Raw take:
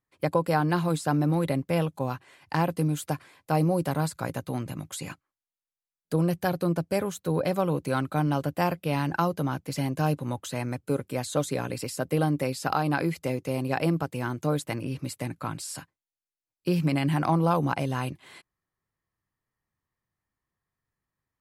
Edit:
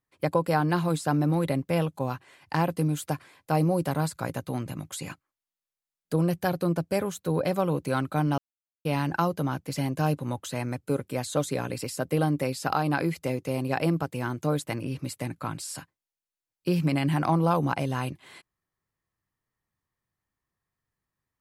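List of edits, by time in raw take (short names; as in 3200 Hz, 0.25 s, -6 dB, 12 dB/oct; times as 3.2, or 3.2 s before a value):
8.38–8.85 mute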